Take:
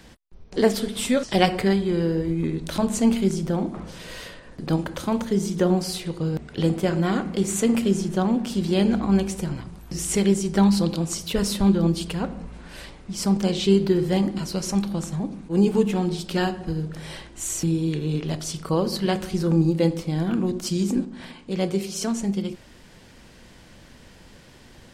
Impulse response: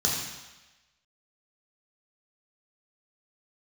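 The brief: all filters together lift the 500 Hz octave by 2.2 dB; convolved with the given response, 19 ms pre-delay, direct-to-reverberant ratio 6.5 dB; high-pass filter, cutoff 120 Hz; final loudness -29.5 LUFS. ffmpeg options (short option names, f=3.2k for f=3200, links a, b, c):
-filter_complex "[0:a]highpass=120,equalizer=f=500:t=o:g=3,asplit=2[a][b];[1:a]atrim=start_sample=2205,adelay=19[c];[b][c]afir=irnorm=-1:irlink=0,volume=-17dB[d];[a][d]amix=inputs=2:normalize=0,volume=-9dB"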